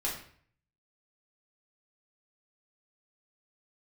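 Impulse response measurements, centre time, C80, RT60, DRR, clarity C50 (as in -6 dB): 33 ms, 9.0 dB, 0.55 s, -5.5 dB, 5.5 dB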